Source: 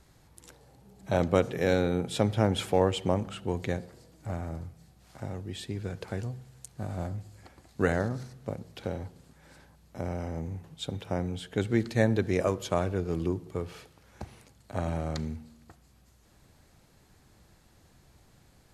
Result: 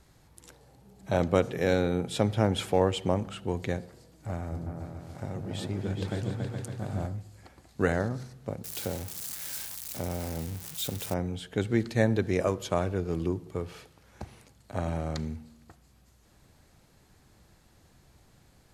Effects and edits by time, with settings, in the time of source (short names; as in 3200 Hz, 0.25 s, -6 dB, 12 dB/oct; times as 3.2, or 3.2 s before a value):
4.38–7.06 repeats that get brighter 0.14 s, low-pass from 400 Hz, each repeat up 2 oct, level 0 dB
8.64–11.14 switching spikes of -27 dBFS